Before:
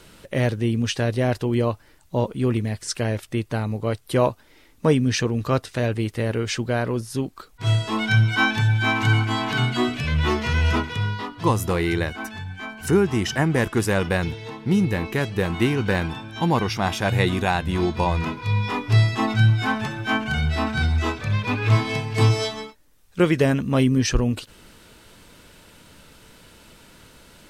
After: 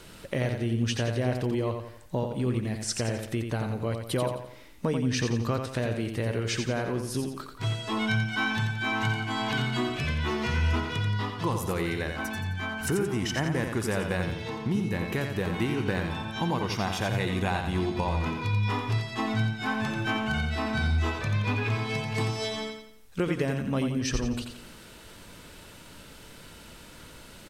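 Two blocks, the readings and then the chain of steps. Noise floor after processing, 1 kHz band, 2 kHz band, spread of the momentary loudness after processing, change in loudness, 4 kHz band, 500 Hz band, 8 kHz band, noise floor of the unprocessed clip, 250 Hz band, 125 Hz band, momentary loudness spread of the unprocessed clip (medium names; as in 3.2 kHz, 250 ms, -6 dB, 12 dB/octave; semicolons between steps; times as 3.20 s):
-49 dBFS, -6.0 dB, -5.5 dB, 18 LU, -6.5 dB, -5.0 dB, -7.0 dB, -4.0 dB, -53 dBFS, -6.0 dB, -7.5 dB, 8 LU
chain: compression 3:1, threshold -28 dBFS, peak gain reduction 12 dB; feedback delay 87 ms, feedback 42%, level -6 dB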